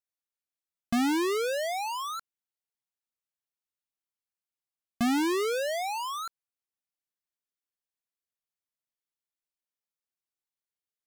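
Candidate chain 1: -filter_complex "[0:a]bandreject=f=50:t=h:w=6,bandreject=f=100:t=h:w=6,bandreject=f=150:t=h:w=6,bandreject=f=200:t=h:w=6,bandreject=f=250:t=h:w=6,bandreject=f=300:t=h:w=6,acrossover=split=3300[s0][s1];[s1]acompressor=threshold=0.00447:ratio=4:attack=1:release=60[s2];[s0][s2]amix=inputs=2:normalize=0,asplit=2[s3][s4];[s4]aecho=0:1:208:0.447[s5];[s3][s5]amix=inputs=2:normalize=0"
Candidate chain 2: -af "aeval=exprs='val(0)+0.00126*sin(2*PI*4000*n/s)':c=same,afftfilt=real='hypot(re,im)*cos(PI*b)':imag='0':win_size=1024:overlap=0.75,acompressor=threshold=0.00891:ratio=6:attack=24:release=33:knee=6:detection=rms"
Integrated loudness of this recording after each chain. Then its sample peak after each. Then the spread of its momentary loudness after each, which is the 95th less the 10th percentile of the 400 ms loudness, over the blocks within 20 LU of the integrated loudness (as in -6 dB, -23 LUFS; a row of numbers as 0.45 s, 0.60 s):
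-29.5 LUFS, -41.5 LUFS; -17.5 dBFS, -23.5 dBFS; 15 LU, 7 LU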